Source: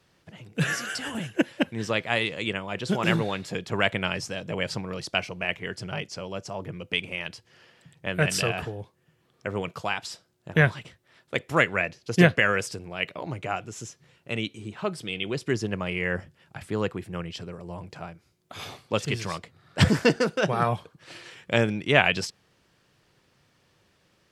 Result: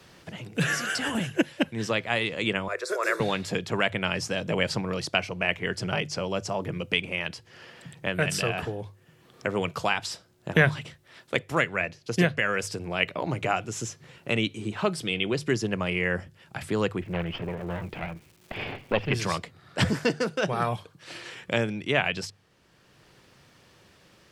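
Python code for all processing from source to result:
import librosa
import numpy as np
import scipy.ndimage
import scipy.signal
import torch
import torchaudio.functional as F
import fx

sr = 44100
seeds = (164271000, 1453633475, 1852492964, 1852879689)

y = fx.chain(x, sr, fx.highpass(hz=420.0, slope=24),
    fx.fixed_phaser(hz=820.0, stages=6), at=(2.68, 3.2))
y = fx.lower_of_two(y, sr, delay_ms=0.39, at=(17.0, 19.13), fade=0.02)
y = fx.lowpass(y, sr, hz=3000.0, slope=24, at=(17.0, 19.13), fade=0.02)
y = fx.dmg_crackle(y, sr, seeds[0], per_s=480.0, level_db=-58.0, at=(17.0, 19.13), fade=0.02)
y = fx.rider(y, sr, range_db=4, speed_s=0.5)
y = fx.hum_notches(y, sr, base_hz=50, count=3)
y = fx.band_squash(y, sr, depth_pct=40)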